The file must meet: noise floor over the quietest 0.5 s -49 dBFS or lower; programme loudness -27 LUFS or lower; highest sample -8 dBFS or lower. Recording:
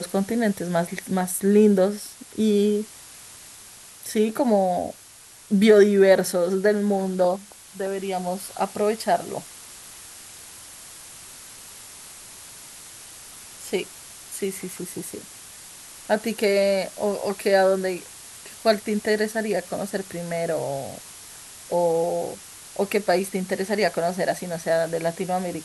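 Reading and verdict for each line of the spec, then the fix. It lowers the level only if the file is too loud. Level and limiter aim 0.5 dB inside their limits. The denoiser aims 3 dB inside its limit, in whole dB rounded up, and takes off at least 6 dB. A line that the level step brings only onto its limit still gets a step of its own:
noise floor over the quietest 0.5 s -47 dBFS: fail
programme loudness -23.0 LUFS: fail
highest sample -4.0 dBFS: fail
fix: gain -4.5 dB

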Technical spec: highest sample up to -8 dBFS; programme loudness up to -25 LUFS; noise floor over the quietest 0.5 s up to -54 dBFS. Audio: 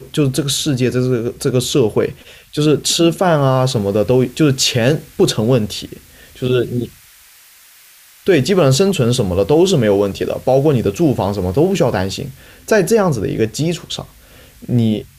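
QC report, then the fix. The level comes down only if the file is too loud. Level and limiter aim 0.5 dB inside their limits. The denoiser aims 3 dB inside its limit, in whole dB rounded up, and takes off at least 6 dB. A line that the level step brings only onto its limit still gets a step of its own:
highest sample -3.5 dBFS: fail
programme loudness -15.5 LUFS: fail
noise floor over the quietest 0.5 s -45 dBFS: fail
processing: gain -10 dB

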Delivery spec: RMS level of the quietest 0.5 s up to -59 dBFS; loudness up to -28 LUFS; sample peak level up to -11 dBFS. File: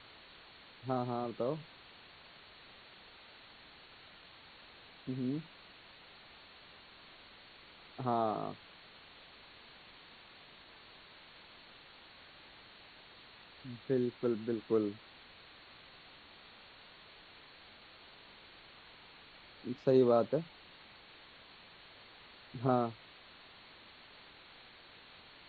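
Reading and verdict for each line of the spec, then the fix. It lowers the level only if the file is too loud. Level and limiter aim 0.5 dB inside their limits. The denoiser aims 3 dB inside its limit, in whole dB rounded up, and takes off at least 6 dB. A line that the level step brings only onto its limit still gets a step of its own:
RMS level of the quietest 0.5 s -57 dBFS: fail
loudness -35.0 LUFS: OK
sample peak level -16.5 dBFS: OK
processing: denoiser 6 dB, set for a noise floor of -57 dBFS

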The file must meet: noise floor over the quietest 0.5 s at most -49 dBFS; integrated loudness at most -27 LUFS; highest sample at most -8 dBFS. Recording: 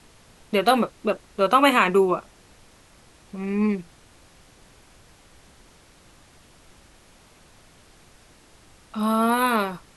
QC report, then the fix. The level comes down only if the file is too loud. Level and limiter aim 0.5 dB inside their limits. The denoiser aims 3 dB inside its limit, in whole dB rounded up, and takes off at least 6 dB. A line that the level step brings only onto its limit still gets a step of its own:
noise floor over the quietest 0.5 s -53 dBFS: OK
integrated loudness -22.0 LUFS: fail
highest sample -3.5 dBFS: fail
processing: gain -5.5 dB

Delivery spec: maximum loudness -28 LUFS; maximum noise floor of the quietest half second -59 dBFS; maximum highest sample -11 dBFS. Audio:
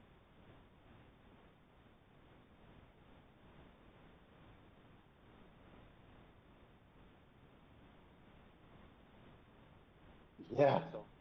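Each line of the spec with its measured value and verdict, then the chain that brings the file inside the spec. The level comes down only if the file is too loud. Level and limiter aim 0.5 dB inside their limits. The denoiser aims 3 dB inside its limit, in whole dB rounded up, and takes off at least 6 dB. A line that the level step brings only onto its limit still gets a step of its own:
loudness -35.5 LUFS: OK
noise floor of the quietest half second -65 dBFS: OK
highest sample -19.0 dBFS: OK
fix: none

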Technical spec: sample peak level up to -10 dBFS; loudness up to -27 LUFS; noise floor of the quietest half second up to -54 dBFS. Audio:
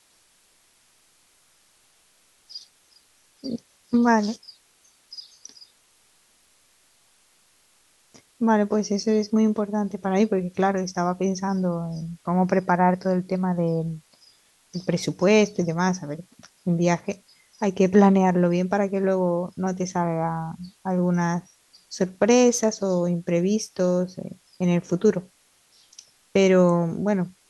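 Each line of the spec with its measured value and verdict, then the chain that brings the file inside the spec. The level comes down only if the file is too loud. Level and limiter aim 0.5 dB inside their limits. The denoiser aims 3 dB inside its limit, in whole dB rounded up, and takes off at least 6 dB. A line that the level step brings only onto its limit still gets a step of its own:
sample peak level -5.0 dBFS: fail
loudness -23.0 LUFS: fail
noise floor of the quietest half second -61 dBFS: OK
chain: gain -4.5 dB; limiter -10.5 dBFS

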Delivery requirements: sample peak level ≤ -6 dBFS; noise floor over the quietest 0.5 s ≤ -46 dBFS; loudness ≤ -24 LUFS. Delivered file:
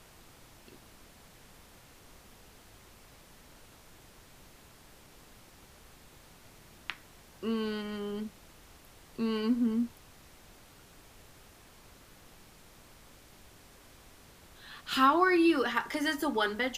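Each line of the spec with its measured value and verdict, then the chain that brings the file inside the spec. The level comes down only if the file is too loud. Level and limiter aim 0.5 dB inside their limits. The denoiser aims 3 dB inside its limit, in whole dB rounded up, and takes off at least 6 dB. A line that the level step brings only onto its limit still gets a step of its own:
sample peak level -12.5 dBFS: OK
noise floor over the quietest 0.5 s -56 dBFS: OK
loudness -30.0 LUFS: OK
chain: none

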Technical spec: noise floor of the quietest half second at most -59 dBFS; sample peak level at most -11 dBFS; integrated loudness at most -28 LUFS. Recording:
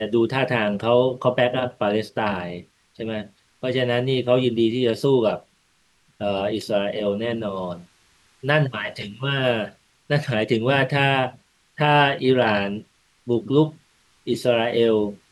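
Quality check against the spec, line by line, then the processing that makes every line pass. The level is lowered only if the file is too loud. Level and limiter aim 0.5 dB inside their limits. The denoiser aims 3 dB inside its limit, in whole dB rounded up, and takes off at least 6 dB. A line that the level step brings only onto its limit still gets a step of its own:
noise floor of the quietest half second -63 dBFS: OK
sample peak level -6.0 dBFS: fail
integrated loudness -22.0 LUFS: fail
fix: gain -6.5 dB

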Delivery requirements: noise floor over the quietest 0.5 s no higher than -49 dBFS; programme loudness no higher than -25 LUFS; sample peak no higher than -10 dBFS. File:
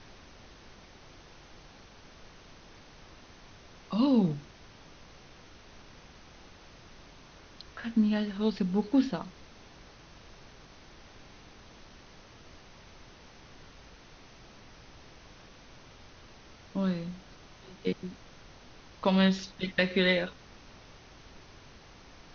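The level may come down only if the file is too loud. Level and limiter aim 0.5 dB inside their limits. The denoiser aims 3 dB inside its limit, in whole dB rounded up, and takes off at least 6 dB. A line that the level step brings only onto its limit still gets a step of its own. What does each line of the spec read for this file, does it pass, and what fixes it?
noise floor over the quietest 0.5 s -53 dBFS: OK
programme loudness -29.5 LUFS: OK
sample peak -12.0 dBFS: OK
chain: none

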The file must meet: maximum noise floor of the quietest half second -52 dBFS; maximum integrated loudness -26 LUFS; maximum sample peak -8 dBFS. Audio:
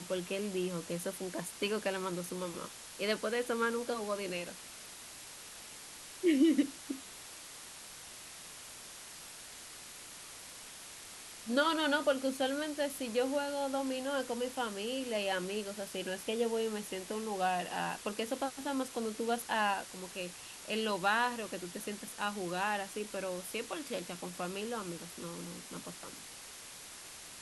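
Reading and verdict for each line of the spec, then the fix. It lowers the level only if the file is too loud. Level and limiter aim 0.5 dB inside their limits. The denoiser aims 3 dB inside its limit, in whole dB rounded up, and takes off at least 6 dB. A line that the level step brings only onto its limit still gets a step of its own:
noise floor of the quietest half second -50 dBFS: fail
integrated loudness -35.5 LUFS: OK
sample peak -17.5 dBFS: OK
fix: denoiser 6 dB, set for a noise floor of -50 dBFS

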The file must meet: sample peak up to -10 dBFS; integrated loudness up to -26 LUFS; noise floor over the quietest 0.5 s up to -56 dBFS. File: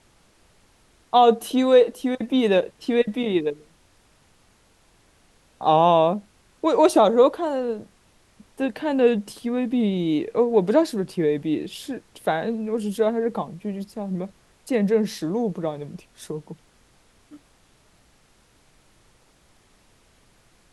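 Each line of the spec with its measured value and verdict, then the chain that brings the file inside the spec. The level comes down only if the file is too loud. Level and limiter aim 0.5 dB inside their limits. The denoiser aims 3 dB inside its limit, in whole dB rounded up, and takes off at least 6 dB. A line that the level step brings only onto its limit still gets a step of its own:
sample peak -5.5 dBFS: fail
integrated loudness -22.0 LUFS: fail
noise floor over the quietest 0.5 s -59 dBFS: OK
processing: gain -4.5 dB; limiter -10.5 dBFS

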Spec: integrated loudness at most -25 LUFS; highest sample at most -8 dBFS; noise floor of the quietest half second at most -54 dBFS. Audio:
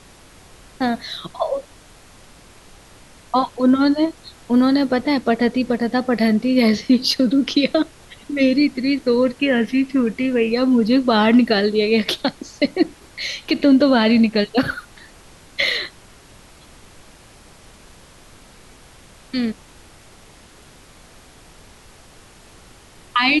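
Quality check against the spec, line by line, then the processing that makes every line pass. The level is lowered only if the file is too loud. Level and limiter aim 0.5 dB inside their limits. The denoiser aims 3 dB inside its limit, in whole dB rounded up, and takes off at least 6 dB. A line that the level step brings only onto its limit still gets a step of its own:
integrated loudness -18.5 LUFS: fail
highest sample -5.5 dBFS: fail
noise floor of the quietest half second -46 dBFS: fail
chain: denoiser 6 dB, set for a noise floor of -46 dBFS; gain -7 dB

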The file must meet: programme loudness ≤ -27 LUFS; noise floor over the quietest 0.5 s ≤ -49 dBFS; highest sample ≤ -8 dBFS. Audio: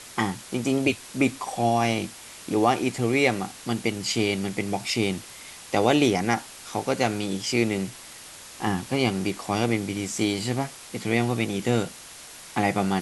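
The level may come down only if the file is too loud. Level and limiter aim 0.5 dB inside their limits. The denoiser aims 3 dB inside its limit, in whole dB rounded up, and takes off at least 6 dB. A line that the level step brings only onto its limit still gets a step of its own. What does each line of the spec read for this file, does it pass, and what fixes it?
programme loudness -25.5 LUFS: fail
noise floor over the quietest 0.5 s -44 dBFS: fail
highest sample -5.5 dBFS: fail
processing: denoiser 6 dB, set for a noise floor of -44 dBFS; gain -2 dB; limiter -8.5 dBFS

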